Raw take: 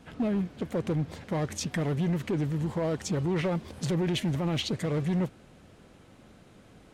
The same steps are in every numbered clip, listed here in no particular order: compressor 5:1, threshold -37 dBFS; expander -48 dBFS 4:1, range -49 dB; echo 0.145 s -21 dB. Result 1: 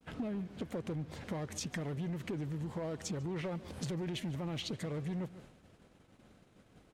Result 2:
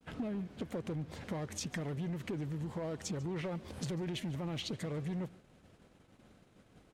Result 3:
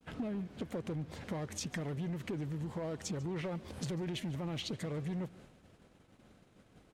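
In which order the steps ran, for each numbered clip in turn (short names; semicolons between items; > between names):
echo > expander > compressor; compressor > echo > expander; expander > compressor > echo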